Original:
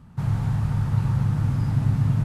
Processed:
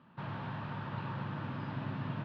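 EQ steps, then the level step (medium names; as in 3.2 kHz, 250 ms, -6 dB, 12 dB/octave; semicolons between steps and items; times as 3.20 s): distance through air 92 m; cabinet simulation 430–3400 Hz, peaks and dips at 450 Hz -7 dB, 770 Hz -9 dB, 1.3 kHz -5 dB, 2.1 kHz -7 dB; +2.5 dB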